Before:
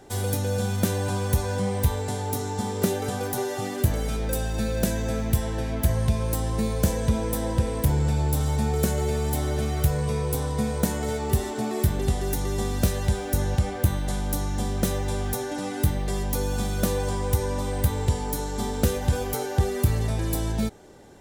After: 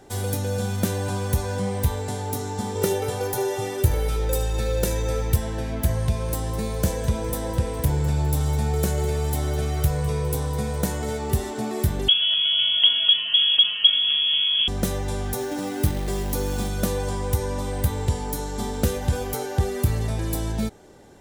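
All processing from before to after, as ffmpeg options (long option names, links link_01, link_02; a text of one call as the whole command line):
ffmpeg -i in.wav -filter_complex "[0:a]asettb=1/sr,asplit=3[link_01][link_02][link_03];[link_01]atrim=end=2.754[link_04];[link_02]atrim=start=2.75:end=5.36,asetpts=PTS-STARTPTS,afade=type=in:duration=0.004:curve=qsin,afade=type=out:start_time=2.606:duration=0.004:curve=qsin,aecho=1:1:2.2:0.71,atrim=end_sample=115101,aecho=1:1:77:0.15,atrim=end_sample=115101[link_05];[link_03]atrim=start=5.356[link_06];[link_04][link_05]acrossfade=duration=0.004:curve1=hsin:curve2=qsin[link_07];[link_07][link_06]acrossfade=duration=0.004:curve1=qsin:curve2=hsin,asettb=1/sr,asplit=3[link_08][link_09][link_10];[link_08]atrim=end=5.964[link_11];[link_09]atrim=start=5.96:end=11.02,asetpts=PTS-STARTPTS,afade=type=in:duration=0.004:curve=qsin,afade=type=out:start_time=5.056:duration=0.004:curve=qsin,bandreject=frequency=230:width=6.4,aecho=1:1:205|410|615|820:0.178|0.0729|0.0299|0.0123,atrim=end_sample=223146[link_12];[link_10]atrim=start=11.016[link_13];[link_11][link_12]acrossfade=duration=0.004:curve1=hsin:curve2=qsin[link_14];[link_14][link_13]acrossfade=duration=0.004:curve1=qsin:curve2=hsin,asettb=1/sr,asplit=3[link_15][link_16][link_17];[link_15]atrim=end=12.084[link_18];[link_16]atrim=start=12.08:end=14.68,asetpts=PTS-STARTPTS,afade=type=in:duration=0.004:curve=qsin,afade=type=out:start_time=2.596:duration=0.004:curve=qsin,equalizer=frequency=1600:width_type=o:width=1.7:gain=-8,acontrast=32,lowpass=frequency=2900:width_type=q:width=0.5098,lowpass=frequency=2900:width_type=q:width=0.6013,lowpass=frequency=2900:width_type=q:width=0.9,lowpass=frequency=2900:width_type=q:width=2.563,afreqshift=-3400[link_19];[link_17]atrim=start=14.676[link_20];[link_18][link_19]acrossfade=duration=0.004:curve1=hsin:curve2=qsin[link_21];[link_21][link_20]acrossfade=duration=0.004:curve1=qsin:curve2=hsin,asettb=1/sr,asplit=3[link_22][link_23][link_24];[link_22]atrim=end=15.364[link_25];[link_23]atrim=start=15.36:end=16.69,asetpts=PTS-STARTPTS,afade=type=in:duration=0.004:curve=qsin,afade=type=out:start_time=1.326:duration=0.004:curve=qsin,equalizer=frequency=340:width_type=o:width=0.54:gain=5,acrusher=bits=4:mode=log:mix=0:aa=0.000001[link_26];[link_24]atrim=start=16.686[link_27];[link_25][link_26]acrossfade=duration=0.004:curve1=hsin:curve2=qsin[link_28];[link_28][link_27]acrossfade=duration=0.004:curve1=qsin:curve2=hsin" out.wav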